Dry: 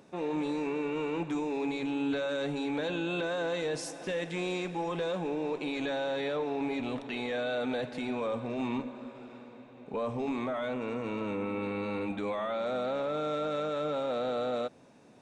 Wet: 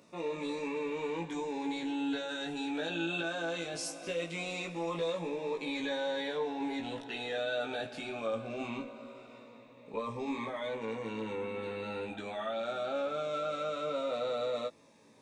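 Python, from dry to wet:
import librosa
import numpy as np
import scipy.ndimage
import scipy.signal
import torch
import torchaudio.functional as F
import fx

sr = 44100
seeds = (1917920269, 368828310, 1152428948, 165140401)

y = fx.low_shelf(x, sr, hz=400.0, db=-9.0)
y = fx.doubler(y, sr, ms=18.0, db=-2.5)
y = fx.notch_cascade(y, sr, direction='falling', hz=0.21)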